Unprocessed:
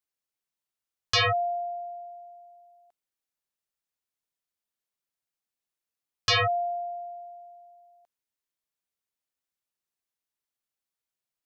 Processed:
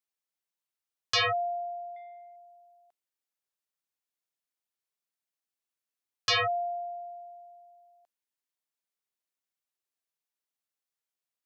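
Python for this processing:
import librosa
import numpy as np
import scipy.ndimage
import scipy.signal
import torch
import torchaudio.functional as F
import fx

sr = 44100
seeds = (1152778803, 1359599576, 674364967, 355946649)

y = fx.highpass(x, sr, hz=250.0, slope=6)
y = fx.transformer_sat(y, sr, knee_hz=720.0, at=(1.96, 2.36))
y = F.gain(torch.from_numpy(y), -2.5).numpy()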